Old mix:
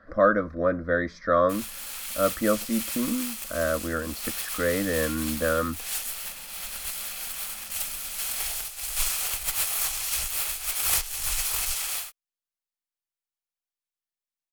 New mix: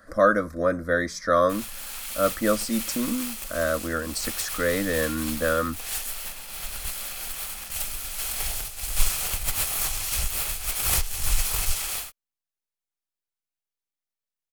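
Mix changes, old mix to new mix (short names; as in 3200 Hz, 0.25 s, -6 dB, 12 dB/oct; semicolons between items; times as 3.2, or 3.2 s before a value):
speech: remove air absorption 270 m; background: add low shelf 400 Hz +12 dB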